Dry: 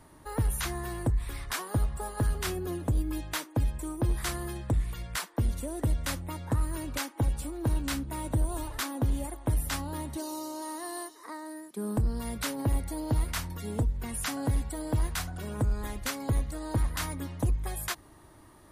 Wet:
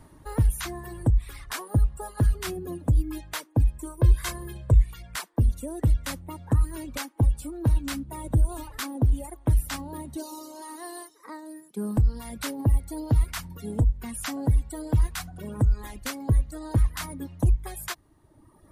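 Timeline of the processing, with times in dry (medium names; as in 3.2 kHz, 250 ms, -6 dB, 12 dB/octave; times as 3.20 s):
3.85–4.84 s: comb 1.9 ms
whole clip: reverb removal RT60 1.4 s; bass shelf 290 Hz +7.5 dB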